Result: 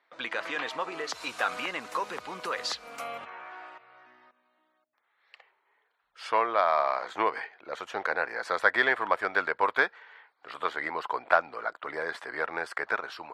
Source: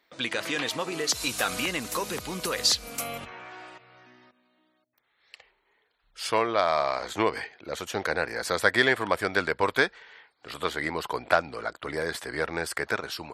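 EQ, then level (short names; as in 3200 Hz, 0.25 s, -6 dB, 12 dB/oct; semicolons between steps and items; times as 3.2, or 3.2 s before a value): band-pass 1100 Hz, Q 1; +2.0 dB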